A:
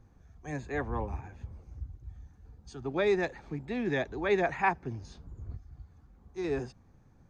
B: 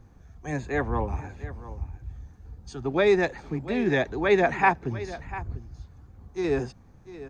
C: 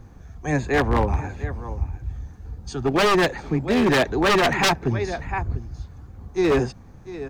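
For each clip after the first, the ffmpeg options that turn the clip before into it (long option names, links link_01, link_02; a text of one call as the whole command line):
ffmpeg -i in.wav -af "aecho=1:1:696:0.168,volume=6.5dB" out.wav
ffmpeg -i in.wav -af "aeval=exprs='0.398*(cos(1*acos(clip(val(0)/0.398,-1,1)))-cos(1*PI/2))+0.0112*(cos(6*acos(clip(val(0)/0.398,-1,1)))-cos(6*PI/2))':channel_layout=same,aeval=exprs='0.0944*(abs(mod(val(0)/0.0944+3,4)-2)-1)':channel_layout=same,volume=8dB" out.wav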